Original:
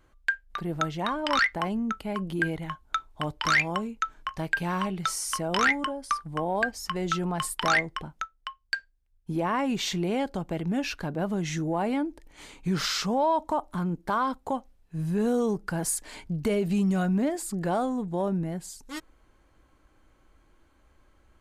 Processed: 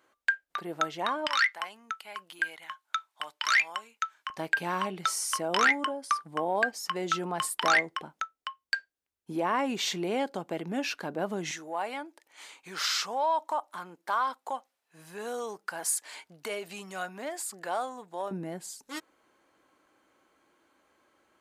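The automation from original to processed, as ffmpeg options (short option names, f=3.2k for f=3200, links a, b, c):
-af "asetnsamples=n=441:p=0,asendcmd='1.27 highpass f 1300;4.3 highpass f 300;11.51 highpass f 760;18.31 highpass f 300',highpass=390"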